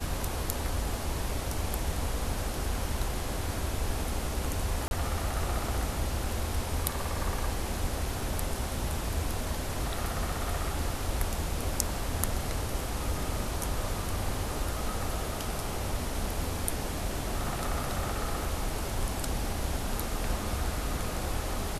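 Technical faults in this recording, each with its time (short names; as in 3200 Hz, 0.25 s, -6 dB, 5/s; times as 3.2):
4.88–4.91 gap 31 ms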